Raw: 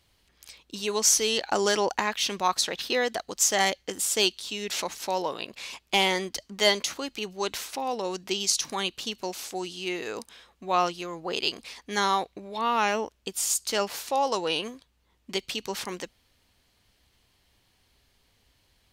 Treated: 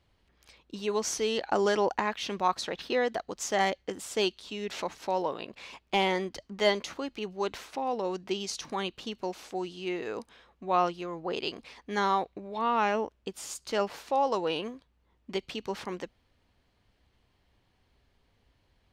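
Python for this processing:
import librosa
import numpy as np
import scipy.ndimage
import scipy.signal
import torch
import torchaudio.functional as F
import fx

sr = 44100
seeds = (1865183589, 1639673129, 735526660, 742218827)

y = fx.lowpass(x, sr, hz=1400.0, slope=6)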